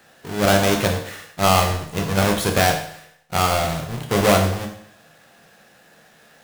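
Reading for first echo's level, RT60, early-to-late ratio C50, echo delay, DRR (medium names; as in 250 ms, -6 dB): no echo, 0.65 s, 7.5 dB, no echo, 2.5 dB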